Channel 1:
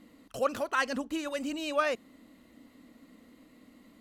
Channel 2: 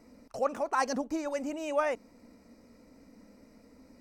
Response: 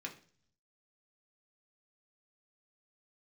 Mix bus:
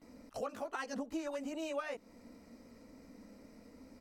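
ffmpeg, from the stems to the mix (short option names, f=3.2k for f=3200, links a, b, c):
-filter_complex "[0:a]volume=-14dB[a];[1:a]acompressor=threshold=-37dB:ratio=6,acrossover=split=380[b][c];[c]acompressor=threshold=-40dB:ratio=6[d];[b][d]amix=inputs=2:normalize=0,volume=-1,adelay=16,volume=0dB[e];[a][e]amix=inputs=2:normalize=0"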